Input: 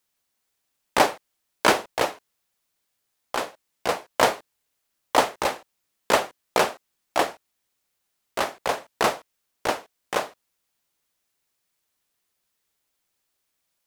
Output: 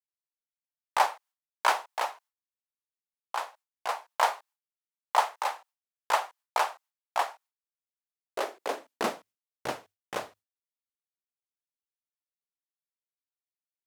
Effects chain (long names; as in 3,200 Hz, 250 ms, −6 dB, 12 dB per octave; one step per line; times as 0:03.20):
mains-hum notches 50/100 Hz
high-pass filter sweep 880 Hz → 83 Hz, 0:07.68–0:10.07
downward expander −42 dBFS
level −9 dB